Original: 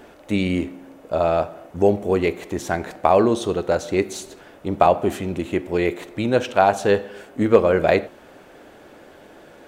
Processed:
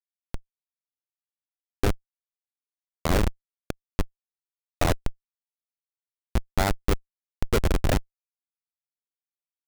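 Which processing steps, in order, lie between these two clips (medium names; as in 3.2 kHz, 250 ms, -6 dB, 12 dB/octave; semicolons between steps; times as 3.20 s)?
Chebyshev shaper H 2 -36 dB, 7 -10 dB, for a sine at -2 dBFS; fifteen-band graphic EQ 160 Hz -3 dB, 630 Hz -5 dB, 6.3 kHz -7 dB; Schmitt trigger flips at -14 dBFS; trim +5 dB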